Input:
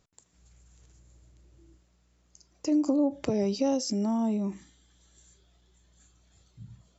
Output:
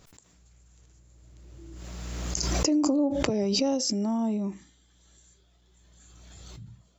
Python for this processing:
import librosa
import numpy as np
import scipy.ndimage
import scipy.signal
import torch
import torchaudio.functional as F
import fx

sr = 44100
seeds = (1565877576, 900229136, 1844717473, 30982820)

y = fx.pre_swell(x, sr, db_per_s=21.0)